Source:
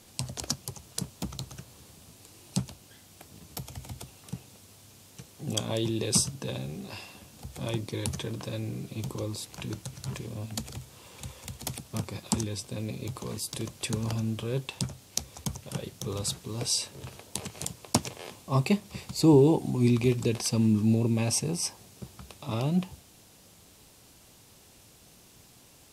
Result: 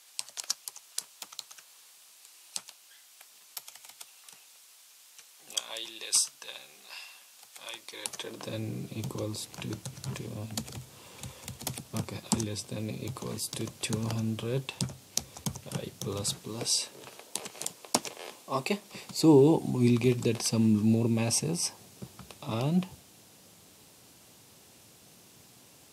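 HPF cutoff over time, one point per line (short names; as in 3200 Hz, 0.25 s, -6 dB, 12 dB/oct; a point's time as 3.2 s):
7.81 s 1200 Hz
8.37 s 350 Hz
8.58 s 100 Hz
16.21 s 100 Hz
17.05 s 330 Hz
18.8 s 330 Hz
19.63 s 110 Hz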